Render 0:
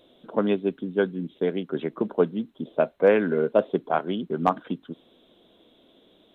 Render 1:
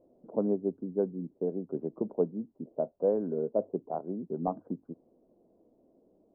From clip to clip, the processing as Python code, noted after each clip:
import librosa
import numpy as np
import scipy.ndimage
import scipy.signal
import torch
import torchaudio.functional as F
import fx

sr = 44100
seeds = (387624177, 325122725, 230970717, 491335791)

y = scipy.signal.sosfilt(scipy.signal.cheby2(4, 70, 3400.0, 'lowpass', fs=sr, output='sos'), x)
y = fx.hum_notches(y, sr, base_hz=50, count=2)
y = fx.rider(y, sr, range_db=10, speed_s=2.0)
y = F.gain(torch.from_numpy(y), -8.0).numpy()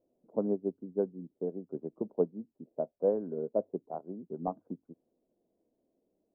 y = fx.upward_expand(x, sr, threshold_db=-48.0, expansion=1.5)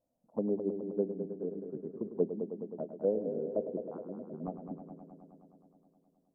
y = fx.env_phaser(x, sr, low_hz=380.0, high_hz=1200.0, full_db=-27.5)
y = fx.echo_heads(y, sr, ms=105, heads='first and second', feedback_pct=70, wet_db=-11)
y = fx.env_lowpass_down(y, sr, base_hz=1100.0, full_db=-32.0)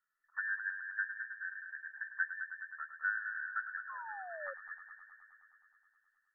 y = fx.band_invert(x, sr, width_hz=2000)
y = fx.spec_paint(y, sr, seeds[0], shape='fall', start_s=3.89, length_s=0.65, low_hz=530.0, high_hz=1100.0, level_db=-41.0)
y = F.gain(torch.from_numpy(y), -5.5).numpy()